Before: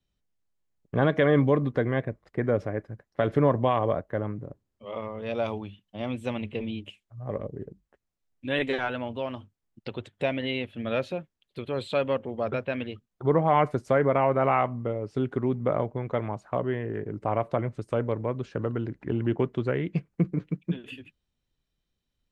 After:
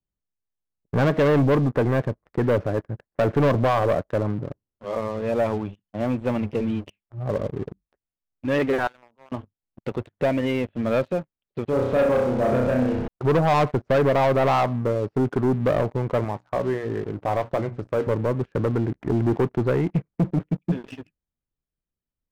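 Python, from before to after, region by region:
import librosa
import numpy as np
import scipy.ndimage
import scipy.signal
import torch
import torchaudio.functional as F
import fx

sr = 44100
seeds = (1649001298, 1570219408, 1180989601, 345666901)

y = fx.chain(x, sr, fx.lowpass(hz=1500.0, slope=24),
    fx.differentiator(),
    fx.sustainer(db_per_s=92.0), at=(8.87, 9.32))
y = fx.chain(y, sr, fx.delta_mod(bps=32000, step_db=-32.0),
    fx.lowpass(hz=1000.0, slope=6),
    fx.room_flutter(wall_m=5.5, rt60_s=0.74), at=(11.7, 13.08))
y = fx.chain(y, sr, fx.high_shelf(hz=3300.0, db=10.5),
    fx.hum_notches(base_hz=60, count=5),
    fx.comb_fb(f0_hz=93.0, decay_s=0.21, harmonics='all', damping=0.0, mix_pct=50), at=(16.24, 18.07))
y = scipy.signal.sosfilt(scipy.signal.butter(2, 1600.0, 'lowpass', fs=sr, output='sos'), y)
y = fx.leveller(y, sr, passes=3)
y = y * 10.0 ** (-3.0 / 20.0)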